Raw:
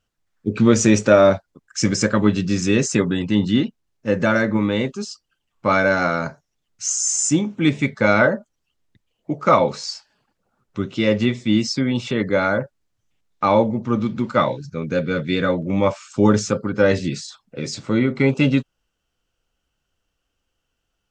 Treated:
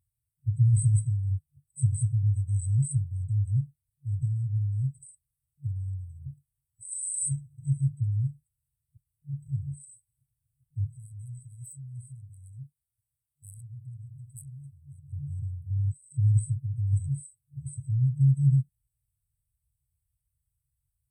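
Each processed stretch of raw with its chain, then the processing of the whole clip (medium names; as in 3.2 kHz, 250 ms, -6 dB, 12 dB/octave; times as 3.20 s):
10.96–15.13 s: bass shelf 440 Hz -10 dB + transformer saturation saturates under 3.3 kHz
whole clip: high-pass 59 Hz; FFT band-reject 140–7900 Hz; trim +3.5 dB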